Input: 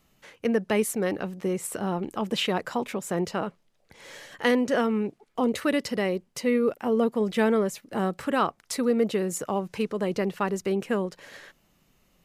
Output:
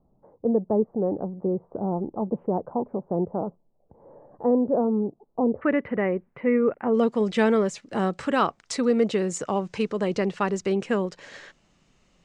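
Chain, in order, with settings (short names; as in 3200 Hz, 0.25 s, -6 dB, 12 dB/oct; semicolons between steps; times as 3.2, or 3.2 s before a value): steep low-pass 900 Hz 36 dB/oct, from 5.61 s 2200 Hz, from 6.93 s 8100 Hz; gain +2 dB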